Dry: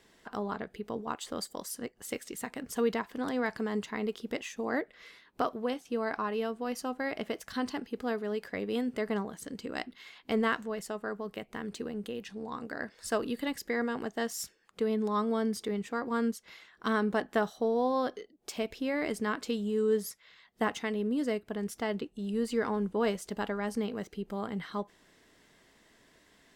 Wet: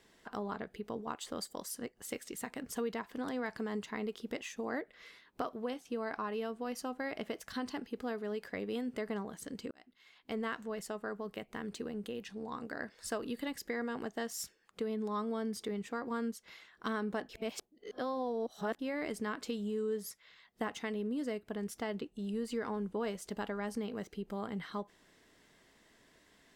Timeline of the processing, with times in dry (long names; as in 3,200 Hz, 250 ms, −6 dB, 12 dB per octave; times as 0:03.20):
0:09.71–0:10.74: fade in
0:17.29–0:18.79: reverse
whole clip: downward compressor 2.5 to 1, threshold −32 dBFS; level −2.5 dB